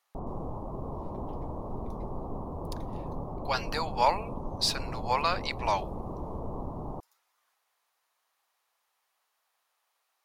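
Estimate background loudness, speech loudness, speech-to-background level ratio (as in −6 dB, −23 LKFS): −39.0 LKFS, −30.0 LKFS, 9.0 dB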